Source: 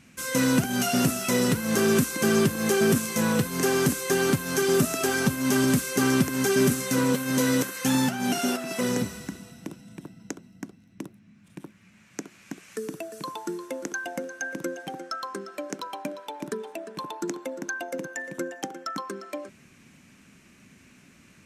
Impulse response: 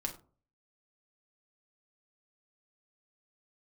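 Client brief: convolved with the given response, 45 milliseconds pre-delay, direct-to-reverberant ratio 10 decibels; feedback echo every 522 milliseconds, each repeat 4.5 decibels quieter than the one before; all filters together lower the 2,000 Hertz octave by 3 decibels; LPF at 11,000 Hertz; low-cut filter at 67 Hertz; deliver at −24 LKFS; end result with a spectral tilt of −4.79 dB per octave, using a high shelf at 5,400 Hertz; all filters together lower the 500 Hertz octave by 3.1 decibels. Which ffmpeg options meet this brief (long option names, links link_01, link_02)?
-filter_complex "[0:a]highpass=67,lowpass=11000,equalizer=frequency=500:width_type=o:gain=-4,equalizer=frequency=2000:width_type=o:gain=-3.5,highshelf=frequency=5400:gain=-3.5,aecho=1:1:522|1044|1566|2088|2610|3132|3654|4176|4698:0.596|0.357|0.214|0.129|0.0772|0.0463|0.0278|0.0167|0.01,asplit=2[link_01][link_02];[1:a]atrim=start_sample=2205,adelay=45[link_03];[link_02][link_03]afir=irnorm=-1:irlink=0,volume=-10.5dB[link_04];[link_01][link_04]amix=inputs=2:normalize=0,volume=1.5dB"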